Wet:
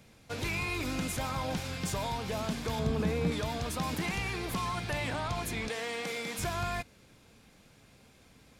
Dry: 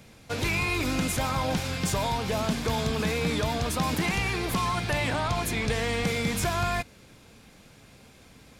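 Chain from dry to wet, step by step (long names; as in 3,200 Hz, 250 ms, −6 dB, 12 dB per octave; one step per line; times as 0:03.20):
0:02.79–0:03.32: tilt shelving filter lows +5.5 dB, about 1,100 Hz
0:05.68–0:06.39: high-pass filter 320 Hz 12 dB per octave
level −6.5 dB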